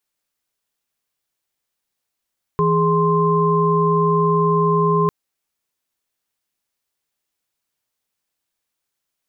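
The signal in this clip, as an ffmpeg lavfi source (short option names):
-f lavfi -i "aevalsrc='0.126*(sin(2*PI*164.81*t)+sin(2*PI*415.3*t)+sin(2*PI*1046.5*t))':d=2.5:s=44100"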